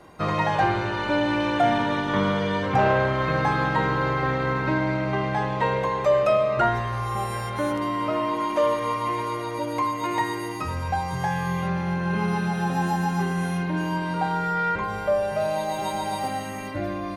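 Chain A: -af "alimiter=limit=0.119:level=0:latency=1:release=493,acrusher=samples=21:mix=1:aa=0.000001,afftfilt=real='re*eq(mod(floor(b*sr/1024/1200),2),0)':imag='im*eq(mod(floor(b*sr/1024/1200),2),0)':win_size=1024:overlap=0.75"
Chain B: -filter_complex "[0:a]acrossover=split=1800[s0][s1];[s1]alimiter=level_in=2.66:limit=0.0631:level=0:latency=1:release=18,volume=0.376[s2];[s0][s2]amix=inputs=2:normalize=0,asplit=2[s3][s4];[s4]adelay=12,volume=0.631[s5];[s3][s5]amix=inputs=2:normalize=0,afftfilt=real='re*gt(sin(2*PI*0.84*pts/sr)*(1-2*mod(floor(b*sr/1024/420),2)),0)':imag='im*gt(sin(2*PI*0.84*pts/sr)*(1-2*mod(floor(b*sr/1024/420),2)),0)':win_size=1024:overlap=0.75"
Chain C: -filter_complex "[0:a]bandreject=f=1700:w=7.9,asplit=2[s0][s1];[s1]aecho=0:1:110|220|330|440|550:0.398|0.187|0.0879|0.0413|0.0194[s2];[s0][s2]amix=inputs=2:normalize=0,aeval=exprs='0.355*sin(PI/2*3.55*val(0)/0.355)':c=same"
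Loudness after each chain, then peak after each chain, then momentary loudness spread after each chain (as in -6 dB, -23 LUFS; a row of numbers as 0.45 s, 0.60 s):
-29.0 LUFS, -27.5 LUFS, -13.0 LUFS; -15.0 dBFS, -11.0 dBFS, -9.0 dBFS; 3 LU, 9 LU, 3 LU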